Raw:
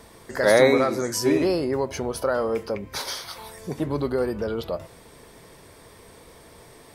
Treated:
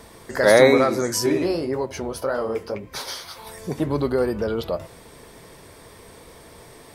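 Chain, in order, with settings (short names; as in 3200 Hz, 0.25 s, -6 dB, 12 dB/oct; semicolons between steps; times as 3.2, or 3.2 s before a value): 1.26–3.47 flange 1.8 Hz, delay 4 ms, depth 10 ms, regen -39%; gain +3 dB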